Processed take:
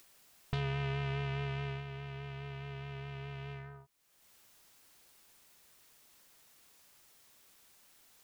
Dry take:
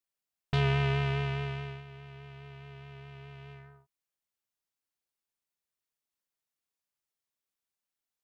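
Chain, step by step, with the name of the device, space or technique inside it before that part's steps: upward and downward compression (upward compressor, threshold -48 dBFS; compression 5:1, threshold -39 dBFS, peak gain reduction 13 dB); trim +4 dB

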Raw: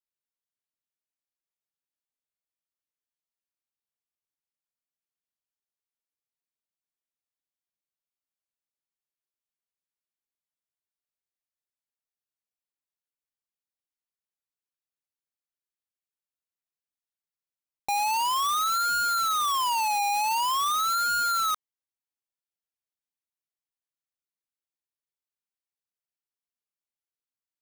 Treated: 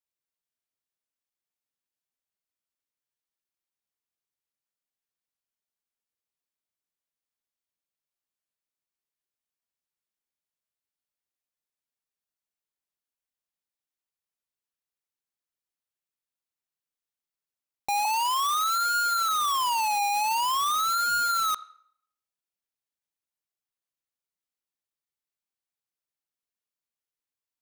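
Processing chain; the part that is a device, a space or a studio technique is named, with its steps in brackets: filtered reverb send (on a send: high-pass 470 Hz 12 dB/octave + low-pass 4.7 kHz 12 dB/octave + reverberation RT60 0.65 s, pre-delay 34 ms, DRR 17.5 dB); 18.05–19.29 s: on the sum: steep high-pass 280 Hz 96 dB/octave

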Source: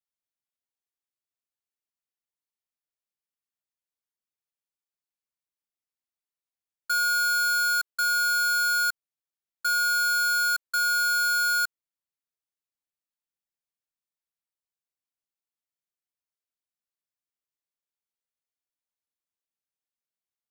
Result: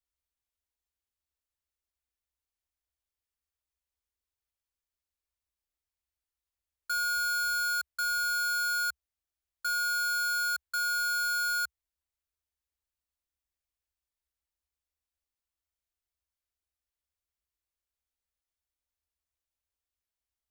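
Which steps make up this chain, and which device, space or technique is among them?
car stereo with a boomy subwoofer (resonant low shelf 100 Hz +13.5 dB, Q 3; peak limiter -29 dBFS, peak gain reduction 6 dB)

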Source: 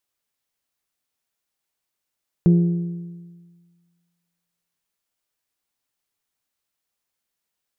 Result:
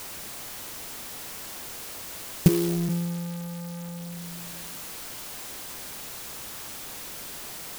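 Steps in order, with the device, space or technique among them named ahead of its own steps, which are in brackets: 2.47–2.88 s: high-pass 360 Hz -> 170 Hz 24 dB/octave; early CD player with a faulty converter (jump at every zero crossing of -32.5 dBFS; sampling jitter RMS 0.14 ms); trim +2 dB

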